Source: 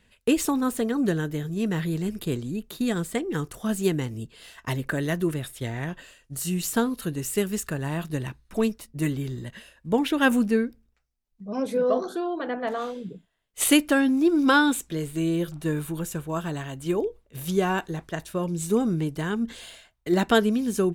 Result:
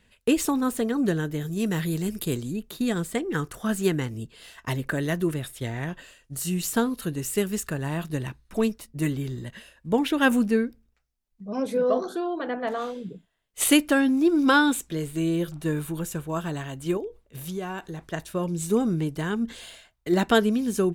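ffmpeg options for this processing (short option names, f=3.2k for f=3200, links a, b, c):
-filter_complex "[0:a]asettb=1/sr,asplit=3[a][b][c];[a]atrim=end=1.414[d];[b]atrim=start=1.41:end=2.53,asetpts=PTS-STARTPTS,afade=t=in:d=0.004:c=qsin,afade=t=out:st=1.116:d=0.004:c=qsin,highshelf=f=5.5k:g=9.5[e];[c]atrim=start=2.526[f];[d][e]acrossfade=d=0.004:c1=hsin:c2=qsin[g];[g][f]acrossfade=d=0.004:c1=qsin:c2=hsin,asettb=1/sr,asplit=3[h][i][j];[h]atrim=end=3.254[k];[i]atrim=start=3.25:end=4.09,asetpts=PTS-STARTPTS,afade=t=in:d=0.004:c=qsin,afade=t=out:st=0.836:d=0.004:c=qsin,equalizer=f=1.5k:w=1.5:g=5.5[l];[j]atrim=start=4.086[m];[k][l]acrossfade=d=0.004:c1=hsin:c2=qsin[n];[n][m]acrossfade=d=0.004:c1=qsin:c2=hsin,asettb=1/sr,asplit=3[o][p][q];[o]atrim=end=16.974[r];[p]atrim=start=16.97:end=18.06,asetpts=PTS-STARTPTS,afade=t=in:d=0.004:c=qsin,afade=t=out:st=1.086:d=0.004:c=qsin,acompressor=threshold=-35dB:ratio=2:attack=3.2:release=140:knee=1:detection=peak[s];[q]atrim=start=18.056[t];[r][s]acrossfade=d=0.004:c1=hsin:c2=qsin[u];[u][t]acrossfade=d=0.004:c1=qsin:c2=hsin"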